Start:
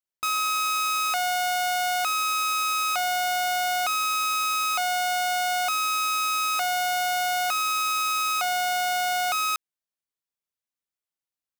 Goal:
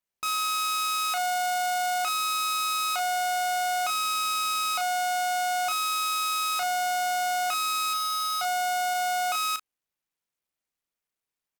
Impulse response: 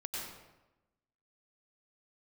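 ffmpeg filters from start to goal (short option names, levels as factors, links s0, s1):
-filter_complex "[0:a]asettb=1/sr,asplit=3[s0][s1][s2];[s0]atrim=end=7.934[s3];[s1]atrim=start=7.93:end=8.94,asetpts=PTS-STARTPTS,afade=t=in:d=0.004:c=qsin,afade=t=out:st=1.006:d=0.004:c=qsin,aecho=1:1:1.4:0.88,atrim=end_sample=44541[s4];[s2]atrim=start=8.936[s5];[s3][s4]acrossfade=d=0.004:c1=hsin:c2=qsin[s6];[s6][s5]acrossfade=d=0.004:c1=qsin:c2=hsin,alimiter=limit=0.0631:level=0:latency=1:release=30,aecho=1:1:26|36:0.2|0.355" -ar 48000 -c:a sbc -b:a 128k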